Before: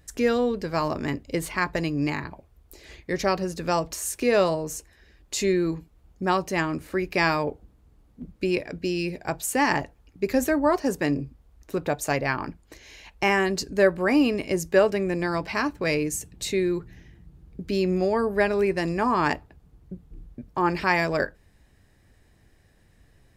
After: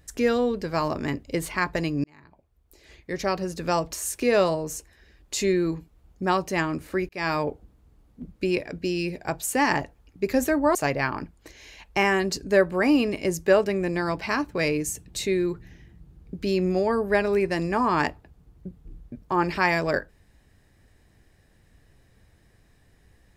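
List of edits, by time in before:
2.04–3.65 s: fade in linear
7.09–7.38 s: fade in
10.75–12.01 s: delete

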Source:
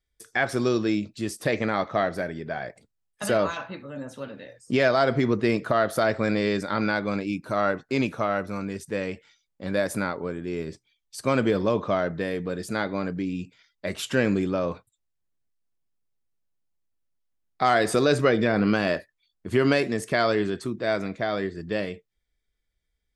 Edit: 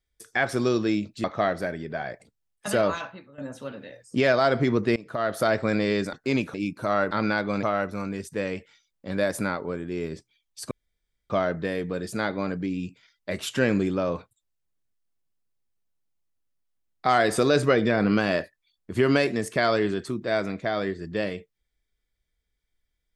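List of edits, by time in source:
1.24–1.80 s: delete
3.55–3.94 s: fade out quadratic, to -12.5 dB
5.52–5.99 s: fade in, from -23.5 dB
6.69–7.21 s: swap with 7.78–8.19 s
11.27–11.86 s: room tone

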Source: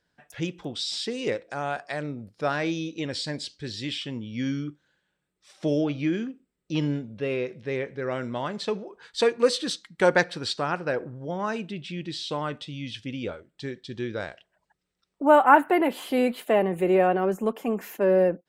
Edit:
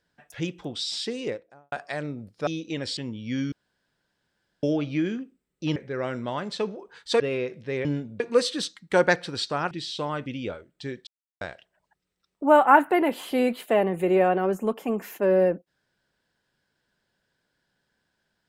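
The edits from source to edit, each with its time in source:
1.06–1.72 s: studio fade out
2.47–2.75 s: delete
3.25–4.05 s: delete
4.60–5.71 s: room tone
6.84–7.19 s: swap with 7.84–9.28 s
10.79–12.03 s: delete
12.58–13.05 s: delete
13.86–14.20 s: mute

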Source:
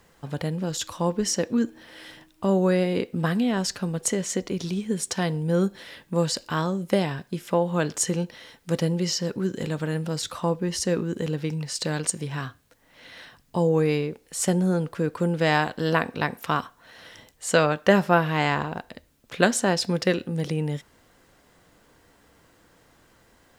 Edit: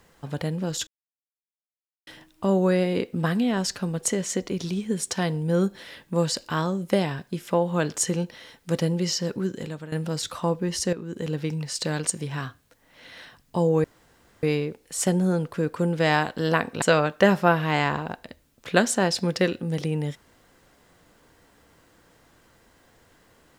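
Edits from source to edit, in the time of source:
0.87–2.07 s: mute
9.38–9.92 s: fade out, to -13.5 dB
10.93–11.36 s: fade in, from -13 dB
13.84 s: insert room tone 0.59 s
16.23–17.48 s: delete

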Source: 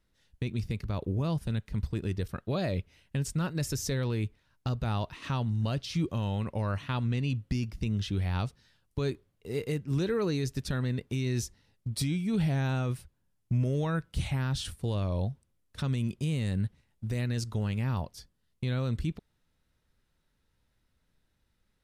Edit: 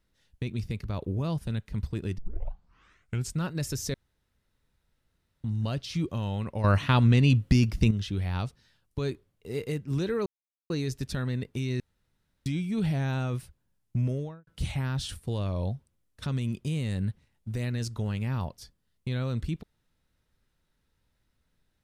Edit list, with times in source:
2.18 s: tape start 1.15 s
3.94–5.44 s: room tone
6.64–7.91 s: gain +9.5 dB
10.26 s: insert silence 0.44 s
11.36–12.02 s: room tone
13.59–14.03 s: studio fade out

